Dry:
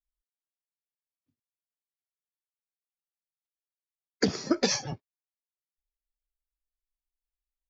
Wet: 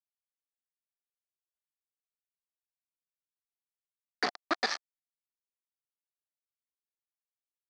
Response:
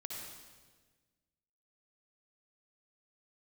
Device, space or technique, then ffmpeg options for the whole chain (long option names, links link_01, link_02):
hand-held game console: -af "acrusher=bits=3:mix=0:aa=0.000001,highpass=460,equalizer=frequency=500:width_type=q:width=4:gain=-8,equalizer=frequency=730:width_type=q:width=4:gain=7,equalizer=frequency=1200:width_type=q:width=4:gain=7,equalizer=frequency=1800:width_type=q:width=4:gain=7,equalizer=frequency=2900:width_type=q:width=4:gain=-7,equalizer=frequency=4400:width_type=q:width=4:gain=4,lowpass=frequency=4900:width=0.5412,lowpass=frequency=4900:width=1.3066,volume=-4dB"